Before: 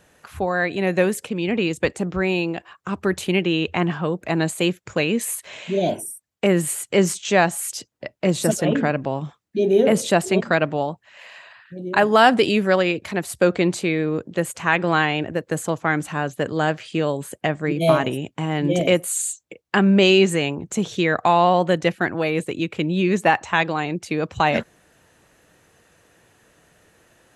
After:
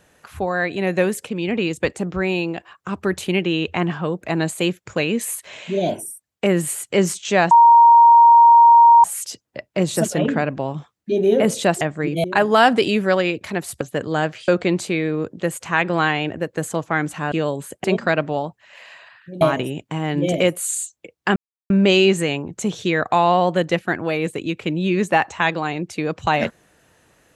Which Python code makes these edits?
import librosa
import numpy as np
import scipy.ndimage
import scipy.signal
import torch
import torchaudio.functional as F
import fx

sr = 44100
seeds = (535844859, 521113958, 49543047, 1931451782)

y = fx.edit(x, sr, fx.insert_tone(at_s=7.51, length_s=1.53, hz=935.0, db=-6.0),
    fx.swap(start_s=10.28, length_s=1.57, other_s=17.45, other_length_s=0.43),
    fx.move(start_s=16.26, length_s=0.67, to_s=13.42),
    fx.insert_silence(at_s=19.83, length_s=0.34), tone=tone)